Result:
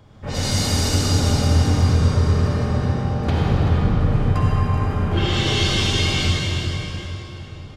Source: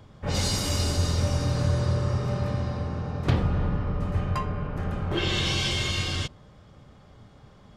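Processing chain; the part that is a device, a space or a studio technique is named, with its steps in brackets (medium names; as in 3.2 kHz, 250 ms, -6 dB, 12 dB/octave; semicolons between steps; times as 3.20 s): cave (delay 384 ms -9.5 dB; reverberation RT60 4.1 s, pre-delay 47 ms, DRR -5 dB)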